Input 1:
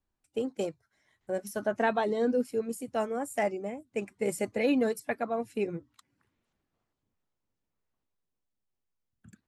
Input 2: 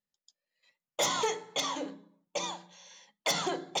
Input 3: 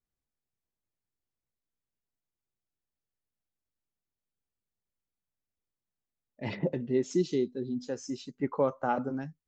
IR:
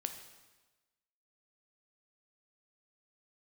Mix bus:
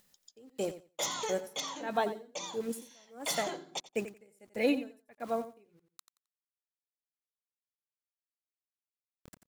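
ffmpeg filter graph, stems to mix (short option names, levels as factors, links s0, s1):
-filter_complex "[0:a]aeval=exprs='val(0)*gte(abs(val(0)),0.00473)':c=same,aeval=exprs='val(0)*pow(10,-36*(0.5-0.5*cos(2*PI*1.5*n/s))/20)':c=same,volume=0.944,asplit=2[s0][s1];[s1]volume=0.224[s2];[1:a]volume=0.422,asplit=2[s3][s4];[s4]volume=0.119[s5];[s2][s5]amix=inputs=2:normalize=0,aecho=0:1:88|176|264:1|0.16|0.0256[s6];[s0][s3][s6]amix=inputs=3:normalize=0,highshelf=f=5200:g=6.5,acompressor=mode=upward:threshold=0.00398:ratio=2.5"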